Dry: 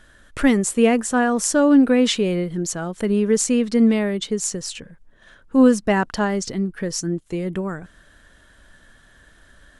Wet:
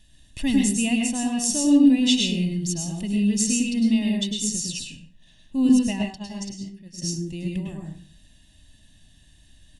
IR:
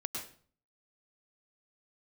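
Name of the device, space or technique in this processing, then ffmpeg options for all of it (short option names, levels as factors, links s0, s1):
microphone above a desk: -filter_complex "[0:a]firequalizer=gain_entry='entry(130,0);entry(860,-9);entry(1400,-21);entry(2500,-10)':delay=0.05:min_phase=1,aecho=1:1:1.1:0.76[s0];[1:a]atrim=start_sample=2205[s1];[s0][s1]afir=irnorm=-1:irlink=0,asettb=1/sr,asplit=3[s2][s3][s4];[s2]atrim=end=5.694[s5];[s3]atrim=start=5.69:end=7.02,asetpts=PTS-STARTPTS,afade=t=in:d=0.004:c=qsin,afade=t=out:st=1.326:d=0.004:c=qsin,agate=range=0.0224:threshold=0.178:ratio=3:detection=peak[s6];[s4]atrim=start=7.016[s7];[s5][s6]acrossfade=d=0.004:c1=hsin:c2=qsin[s8];[s8][s7]acrossfade=d=0.004:c1=qsin:c2=hsin,highshelf=f=1900:t=q:w=1.5:g=12.5,volume=0.531"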